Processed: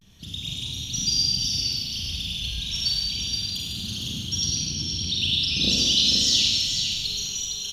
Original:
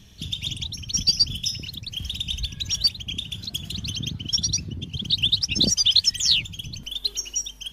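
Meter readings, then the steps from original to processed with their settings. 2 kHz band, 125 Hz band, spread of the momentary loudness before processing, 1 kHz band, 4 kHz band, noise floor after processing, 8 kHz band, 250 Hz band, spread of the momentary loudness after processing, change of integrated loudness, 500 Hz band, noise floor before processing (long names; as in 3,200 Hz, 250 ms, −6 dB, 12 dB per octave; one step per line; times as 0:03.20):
+1.0 dB, −0.5 dB, 14 LU, can't be measured, 0.0 dB, −35 dBFS, +0.5 dB, +1.0 dB, 12 LU, 0.0 dB, +1.0 dB, −45 dBFS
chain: single-tap delay 470 ms −5 dB
four-comb reverb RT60 1.9 s, combs from 33 ms, DRR −5 dB
pitch vibrato 0.32 Hz 46 cents
level −7 dB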